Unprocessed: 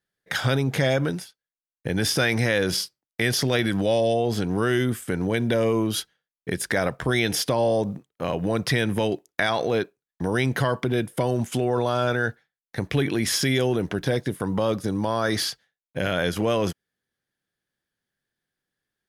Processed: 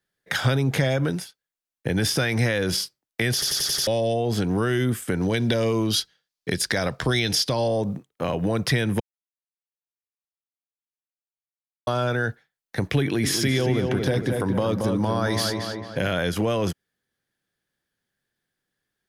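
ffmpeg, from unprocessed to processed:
-filter_complex "[0:a]asettb=1/sr,asplit=3[a][b][c];[a]atrim=end=5.224[d];[b]atrim=start=5.22:end=7.68,asetpts=PTS-STARTPTS,afade=t=in:d=0.004:c=qsin,afade=t=out:st=2.456:d=0.004:c=qsin,equalizer=f=4.7k:w=1.3:g=11[e];[c]atrim=start=7.676[f];[d][e]acrossfade=d=0.004:c1=hsin:c2=qsin[g];[g][f]acrossfade=d=0.004:c1=qsin:c2=hsin,asettb=1/sr,asplit=3[h][i][j];[h]atrim=end=13.014[k];[i]atrim=start=13.01:end=16.14,asetpts=PTS-STARTPTS,afade=t=in:d=0.004:c=qsin,afade=t=out:st=3.126:d=0.004:c=qsin,asplit=2[l][m];[m]adelay=226,lowpass=f=2.3k:p=1,volume=-5dB,asplit=2[n][o];[o]adelay=226,lowpass=f=2.3k:p=1,volume=0.49,asplit=2[p][q];[q]adelay=226,lowpass=f=2.3k:p=1,volume=0.49,asplit=2[r][s];[s]adelay=226,lowpass=f=2.3k:p=1,volume=0.49,asplit=2[t][u];[u]adelay=226,lowpass=f=2.3k:p=1,volume=0.49,asplit=2[v][w];[w]adelay=226,lowpass=f=2.3k:p=1,volume=0.49[x];[l][n][p][r][t][v][x]amix=inputs=7:normalize=0,atrim=end_sample=138033[y];[j]atrim=start=16.136[z];[k][y]acrossfade=d=0.004:c1=hsin:c2=qsin[aa];[aa][z]acrossfade=d=0.004:c1=qsin:c2=hsin,asplit=9[ab][ac][ad][ae][af][ag][ah][ai][aj];[ab]atrim=end=3.422[ak];[ac]atrim=start=3.328:end=3.422[al];[ad]atrim=start=3.328:end=3.422[am];[ae]atrim=start=3.328:end=3.422[an];[af]atrim=start=3.328:end=3.422[ao];[ag]atrim=start=3.328:end=3.422[ap];[ah]atrim=start=3.868:end=9,asetpts=PTS-STARTPTS,afade=t=out:st=5.128:d=0.004:c=hsin[aq];[ai]atrim=start=9:end=11.87,asetpts=PTS-STARTPTS,volume=0[ar];[aj]atrim=start=11.87,asetpts=PTS-STARTPTS,afade=t=in:d=0.004:c=hsin[as];[ak][al]acrossfade=d=0.004:c1=hsin:c2=hsin[at];[at][am]acrossfade=d=0.004:c1=hsin:c2=hsin[au];[au][an]acrossfade=d=0.004:c1=hsin:c2=hsin[av];[av][ao]acrossfade=d=0.004:c1=hsin:c2=hsin[aw];[aw][ap]acrossfade=d=0.004:c1=hsin:c2=hsin[ax];[aq][ar][as]concat=n=3:v=0:a=1[ay];[ax][ay]acrossfade=d=0.004:c1=hsin:c2=hsin,acrossover=split=160[az][ba];[ba]acompressor=threshold=-25dB:ratio=3[bb];[az][bb]amix=inputs=2:normalize=0,volume=3dB"

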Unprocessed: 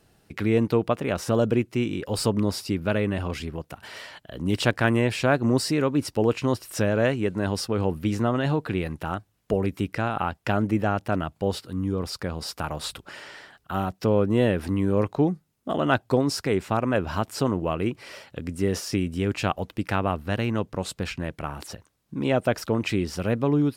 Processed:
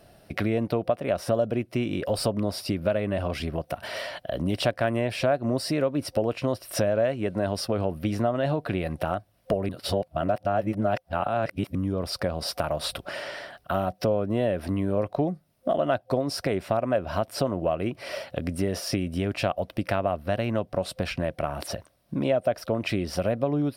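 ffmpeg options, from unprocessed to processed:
-filter_complex "[0:a]asplit=3[a][b][c];[a]atrim=end=9.692[d];[b]atrim=start=9.688:end=11.752,asetpts=PTS-STARTPTS,areverse[e];[c]atrim=start=11.748[f];[d][e]acrossfade=d=0.004:c1=hsin:c2=hsin[g];[g][f]acrossfade=d=0.004:c1=hsin:c2=hsin,superequalizer=8b=3.16:15b=0.398,acompressor=threshold=-30dB:ratio=3,volume=5dB"

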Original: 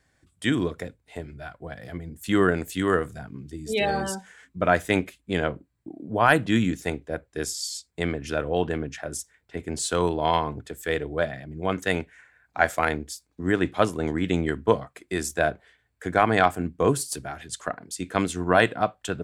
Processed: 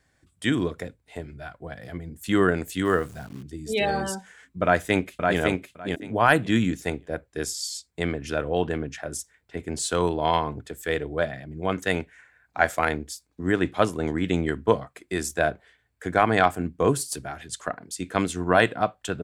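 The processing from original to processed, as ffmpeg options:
-filter_complex "[0:a]asettb=1/sr,asplit=3[a][b][c];[a]atrim=end=2.854[d];[b]atrim=start=2.85:end=3.43,asetpts=PTS-STARTPTS,afade=t=in:d=0.004:c=qsin,afade=t=out:st=0.576:d=0.004:c=qsin,acrusher=bits=9:dc=4:mix=0:aa=0.000001[e];[c]atrim=start=3.426[f];[d][e]acrossfade=d=0.004:c1=hsin:c2=qsin[g];[g][f]acrossfade=d=0.004:c1=qsin:c2=hsin,asplit=2[h][i];[i]afade=t=in:st=4.63:d=0.01,afade=t=out:st=5.39:d=0.01,aecho=0:1:560|1120|1680:0.707946|0.106192|0.0159288[j];[h][j]amix=inputs=2:normalize=0"

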